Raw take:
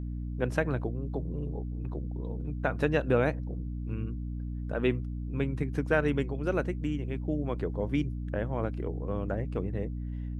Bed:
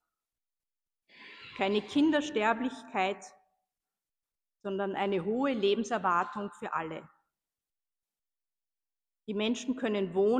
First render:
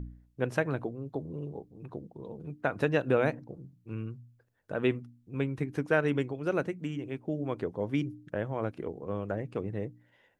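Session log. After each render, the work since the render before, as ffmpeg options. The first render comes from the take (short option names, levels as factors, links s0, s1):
-af "bandreject=f=60:t=h:w=4,bandreject=f=120:t=h:w=4,bandreject=f=180:t=h:w=4,bandreject=f=240:t=h:w=4,bandreject=f=300:t=h:w=4"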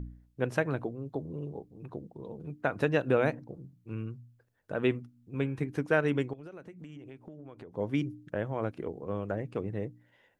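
-filter_complex "[0:a]asettb=1/sr,asplit=3[s0][s1][s2];[s0]atrim=end=5.054[s3];[s1]atrim=start=5.05:end=5.67,asetpts=PTS-STARTPTS,afade=t=in:d=0.004:c=qsin,afade=t=out:st=0.616:d=0.004:c=qsin,bandreject=f=118.8:t=h:w=4,bandreject=f=237.6:t=h:w=4,bandreject=f=356.4:t=h:w=4,bandreject=f=475.2:t=h:w=4,bandreject=f=594:t=h:w=4,bandreject=f=712.8:t=h:w=4,bandreject=f=831.6:t=h:w=4,bandreject=f=950.4:t=h:w=4,bandreject=f=1069.2:t=h:w=4,bandreject=f=1188:t=h:w=4,bandreject=f=1306.8:t=h:w=4,bandreject=f=1425.6:t=h:w=4,bandreject=f=1544.4:t=h:w=4,bandreject=f=1663.2:t=h:w=4,bandreject=f=1782:t=h:w=4,bandreject=f=1900.8:t=h:w=4,bandreject=f=2019.6:t=h:w=4,bandreject=f=2138.4:t=h:w=4,bandreject=f=2257.2:t=h:w=4,bandreject=f=2376:t=h:w=4,bandreject=f=2494.8:t=h:w=4,bandreject=f=2613.6:t=h:w=4,bandreject=f=2732.4:t=h:w=4,bandreject=f=2851.2:t=h:w=4,bandreject=f=2970:t=h:w=4,bandreject=f=3088.8:t=h:w=4,bandreject=f=3207.6:t=h:w=4[s4];[s2]atrim=start=5.666[s5];[s3][s4]acrossfade=d=0.004:c1=hsin:c2=qsin[s6];[s6][s5]acrossfade=d=0.004:c1=qsin:c2=hsin,asettb=1/sr,asplit=3[s7][s8][s9];[s7]atrim=end=6.334[s10];[s8]atrim=start=6.33:end=7.77,asetpts=PTS-STARTPTS,afade=t=in:d=0.004:c=qsin,afade=t=out:st=1.436:d=0.004:c=qsin,acompressor=threshold=0.00794:ratio=16:attack=3.2:release=140:knee=1:detection=peak[s11];[s9]atrim=start=7.766[s12];[s10][s11]acrossfade=d=0.004:c1=hsin:c2=qsin[s13];[s13][s12]acrossfade=d=0.004:c1=qsin:c2=hsin"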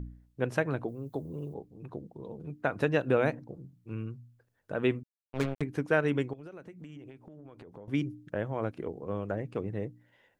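-filter_complex "[0:a]asettb=1/sr,asplit=3[s0][s1][s2];[s0]atrim=end=0.884[s3];[s1]atrim=start=0.88:end=1.54,asetpts=PTS-STARTPTS,afade=t=in:d=0.004:c=qsin,afade=t=out:st=0.656:d=0.004:c=qsin,aemphasis=mode=production:type=50fm[s4];[s2]atrim=start=1.536[s5];[s3][s4]acrossfade=d=0.004:c1=hsin:c2=qsin[s6];[s6][s5]acrossfade=d=0.004:c1=qsin:c2=hsin,asettb=1/sr,asplit=3[s7][s8][s9];[s7]atrim=end=5.034[s10];[s8]atrim=start=5.03:end=5.62,asetpts=PTS-STARTPTS,afade=t=in:d=0.004:c=qsin,afade=t=out:st=0.586:d=0.004:c=qsin,acrusher=bits=4:mix=0:aa=0.5[s11];[s9]atrim=start=5.616[s12];[s10][s11]acrossfade=d=0.004:c1=hsin:c2=qsin[s13];[s13][s12]acrossfade=d=0.004:c1=qsin:c2=hsin,asettb=1/sr,asplit=3[s14][s15][s16];[s14]atrim=end=7.104[s17];[s15]atrim=start=7.1:end=7.88,asetpts=PTS-STARTPTS,afade=t=in:d=0.004:c=qsin,afade=t=out:st=0.776:d=0.004:c=qsin,acompressor=threshold=0.00631:ratio=6:attack=3.2:release=140:knee=1:detection=peak[s18];[s16]atrim=start=7.876[s19];[s17][s18]acrossfade=d=0.004:c1=hsin:c2=qsin[s20];[s20][s19]acrossfade=d=0.004:c1=qsin:c2=hsin"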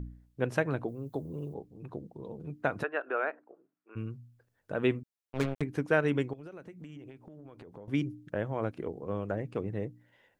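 -filter_complex "[0:a]asplit=3[s0][s1][s2];[s0]afade=t=out:st=2.82:d=0.02[s3];[s1]highpass=f=440:w=0.5412,highpass=f=440:w=1.3066,equalizer=f=510:t=q:w=4:g=-9,equalizer=f=880:t=q:w=4:g=-4,equalizer=f=1400:t=q:w=4:g=5,equalizer=f=2100:t=q:w=4:g=-5,lowpass=f=2300:w=0.5412,lowpass=f=2300:w=1.3066,afade=t=in:st=2.82:d=0.02,afade=t=out:st=3.95:d=0.02[s4];[s2]afade=t=in:st=3.95:d=0.02[s5];[s3][s4][s5]amix=inputs=3:normalize=0"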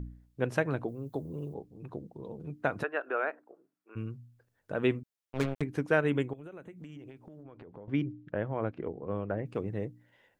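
-filter_complex "[0:a]asettb=1/sr,asplit=3[s0][s1][s2];[s0]atrim=end=6.004[s3];[s1]atrim=start=6:end=6.76,asetpts=PTS-STARTPTS,afade=t=in:d=0.004:c=qsin,afade=t=out:st=0.756:d=0.004:c=qsin,asuperstop=centerf=5000:order=8:qfactor=2.2[s4];[s2]atrim=start=6.756[s5];[s3][s4]acrossfade=d=0.004:c1=hsin:c2=qsin[s6];[s6][s5]acrossfade=d=0.004:c1=qsin:c2=hsin,asettb=1/sr,asplit=3[s7][s8][s9];[s7]atrim=end=7.434[s10];[s8]atrim=start=7.43:end=9.46,asetpts=PTS-STARTPTS,afade=t=in:d=0.004:c=qsin,afade=t=out:st=2.026:d=0.004:c=qsin,lowpass=2800[s11];[s9]atrim=start=9.456[s12];[s10][s11]acrossfade=d=0.004:c1=hsin:c2=qsin[s13];[s13][s12]acrossfade=d=0.004:c1=qsin:c2=hsin"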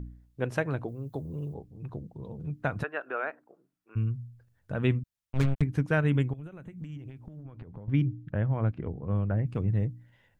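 -af "asubboost=boost=6.5:cutoff=150"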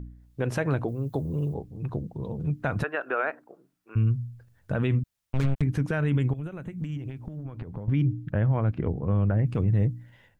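-af "alimiter=level_in=1.06:limit=0.0631:level=0:latency=1:release=39,volume=0.944,dynaudnorm=f=160:g=3:m=2.37"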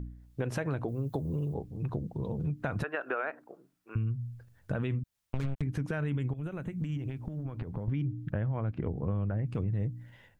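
-af "acompressor=threshold=0.0355:ratio=6"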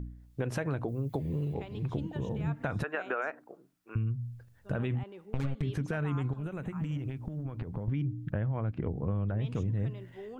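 -filter_complex "[1:a]volume=0.126[s0];[0:a][s0]amix=inputs=2:normalize=0"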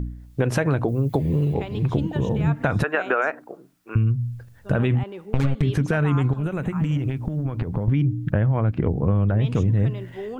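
-af "volume=3.76"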